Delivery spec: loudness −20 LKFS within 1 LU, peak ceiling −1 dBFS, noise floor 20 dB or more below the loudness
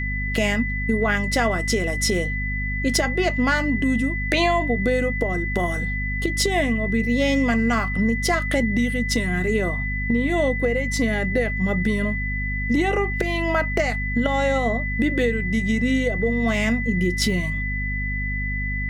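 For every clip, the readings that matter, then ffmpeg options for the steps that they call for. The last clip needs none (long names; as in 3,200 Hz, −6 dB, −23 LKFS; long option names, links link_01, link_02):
mains hum 50 Hz; hum harmonics up to 250 Hz; level of the hum −25 dBFS; interfering tone 2,000 Hz; level of the tone −27 dBFS; integrated loudness −22.0 LKFS; sample peak −6.5 dBFS; target loudness −20.0 LKFS
→ -af "bandreject=frequency=50:width_type=h:width=6,bandreject=frequency=100:width_type=h:width=6,bandreject=frequency=150:width_type=h:width=6,bandreject=frequency=200:width_type=h:width=6,bandreject=frequency=250:width_type=h:width=6"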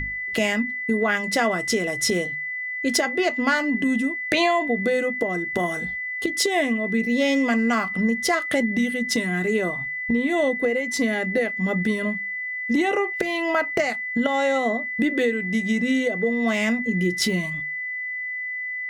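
mains hum none found; interfering tone 2,000 Hz; level of the tone −27 dBFS
→ -af "bandreject=frequency=2000:width=30"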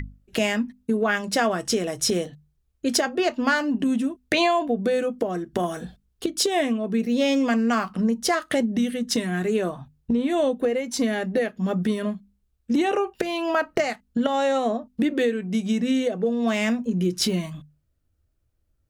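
interfering tone none found; integrated loudness −24.0 LKFS; sample peak −8.0 dBFS; target loudness −20.0 LKFS
→ -af "volume=4dB"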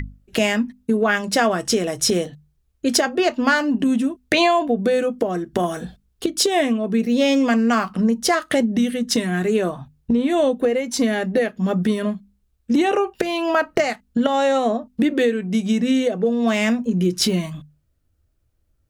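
integrated loudness −20.0 LKFS; sample peak −4.0 dBFS; background noise floor −67 dBFS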